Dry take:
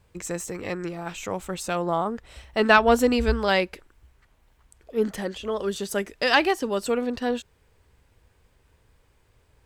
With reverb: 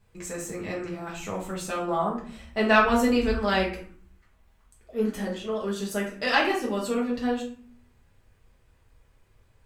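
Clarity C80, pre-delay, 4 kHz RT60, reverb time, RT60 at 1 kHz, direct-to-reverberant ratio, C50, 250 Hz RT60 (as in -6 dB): 11.0 dB, 4 ms, 0.30 s, 0.50 s, 0.50 s, -4.0 dB, 6.5 dB, 0.75 s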